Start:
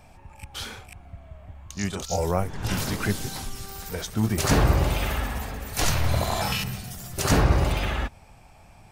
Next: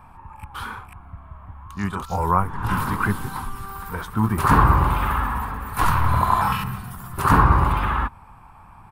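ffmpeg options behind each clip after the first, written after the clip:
-af "firequalizer=gain_entry='entry(230,0);entry(630,-9);entry(1000,14);entry(2000,-4);entry(6100,-19);entry(9800,-5)':delay=0.05:min_phase=1,volume=3dB"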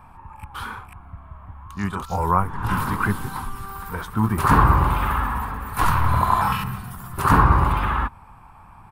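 -af anull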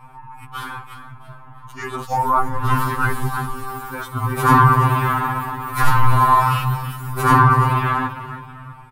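-filter_complex "[0:a]asplit=4[a][b][c][d];[b]adelay=333,afreqshift=32,volume=-12.5dB[e];[c]adelay=666,afreqshift=64,volume=-21.9dB[f];[d]adelay=999,afreqshift=96,volume=-31.2dB[g];[a][e][f][g]amix=inputs=4:normalize=0,afftfilt=real='re*2.45*eq(mod(b,6),0)':imag='im*2.45*eq(mod(b,6),0)':win_size=2048:overlap=0.75,volume=5.5dB"

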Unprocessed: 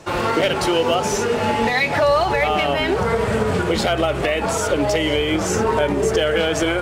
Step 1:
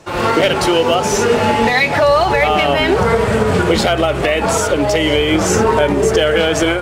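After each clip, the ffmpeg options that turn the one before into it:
-af "dynaudnorm=f=120:g=3:m=11.5dB,volume=-1dB"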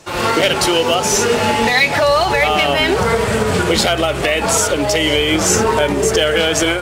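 -af "highshelf=f=2.7k:g=9,volume=-2.5dB"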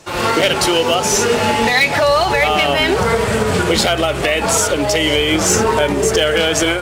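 -af "aeval=exprs='0.596*(abs(mod(val(0)/0.596+3,4)-2)-1)':c=same"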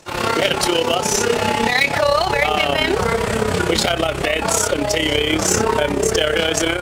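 -af "tremolo=f=33:d=0.667"

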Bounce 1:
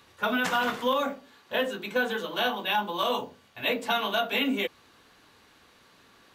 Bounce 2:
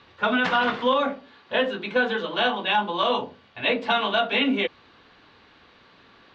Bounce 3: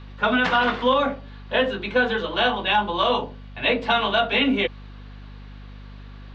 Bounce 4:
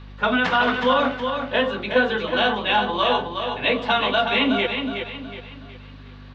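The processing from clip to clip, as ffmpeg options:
-af "lowpass=f=4.3k:w=0.5412,lowpass=f=4.3k:w=1.3066,volume=4.5dB"
-af "aeval=exprs='val(0)+0.00891*(sin(2*PI*50*n/s)+sin(2*PI*2*50*n/s)/2+sin(2*PI*3*50*n/s)/3+sin(2*PI*4*50*n/s)/4+sin(2*PI*5*50*n/s)/5)':c=same,volume=2dB"
-af "aecho=1:1:368|736|1104|1472:0.473|0.18|0.0683|0.026"

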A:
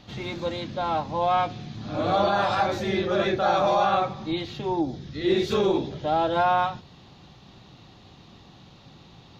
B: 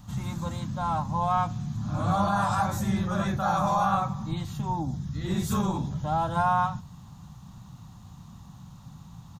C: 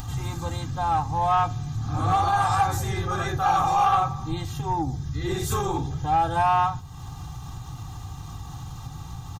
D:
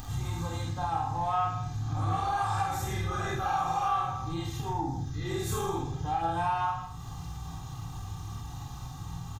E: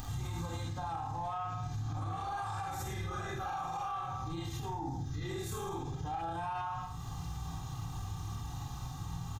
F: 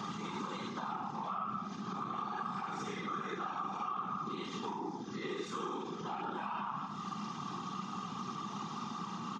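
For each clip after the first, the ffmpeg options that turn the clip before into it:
-af "firequalizer=gain_entry='entry(180,0);entry(370,-23);entry(980,-4);entry(2200,-18);entry(4400,-15);entry(7900,9)':delay=0.05:min_phase=1,volume=6.5dB"
-af "aecho=1:1:2.5:0.94,acompressor=mode=upward:threshold=-30dB:ratio=2.5,asoftclip=type=tanh:threshold=-15dB,volume=2.5dB"
-filter_complex "[0:a]asplit=2[a][b];[b]adelay=48,volume=-3.5dB[c];[a][c]amix=inputs=2:normalize=0,aecho=1:1:30|66|109.2|161|223.2:0.631|0.398|0.251|0.158|0.1,acompressor=threshold=-24dB:ratio=2,volume=-6dB"
-af "alimiter=level_in=5.5dB:limit=-24dB:level=0:latency=1:release=63,volume=-5.5dB,volume=-1dB"
-filter_complex "[0:a]afftfilt=real='hypot(re,im)*cos(2*PI*random(0))':imag='hypot(re,im)*sin(2*PI*random(1))':win_size=512:overlap=0.75,highpass=f=190:w=0.5412,highpass=f=190:w=1.3066,equalizer=f=200:t=q:w=4:g=5,equalizer=f=390:t=q:w=4:g=5,equalizer=f=650:t=q:w=4:g=-10,equalizer=f=1.2k:t=q:w=4:g=10,equalizer=f=1.7k:t=q:w=4:g=-4,equalizer=f=4k:t=q:w=4:g=-6,lowpass=f=5.1k:w=0.5412,lowpass=f=5.1k:w=1.3066,acrossover=split=370|1600[a][b][c];[a]acompressor=threshold=-57dB:ratio=4[d];[b]acompressor=threshold=-56dB:ratio=4[e];[c]acompressor=threshold=-58dB:ratio=4[f];[d][e][f]amix=inputs=3:normalize=0,volume=13dB"

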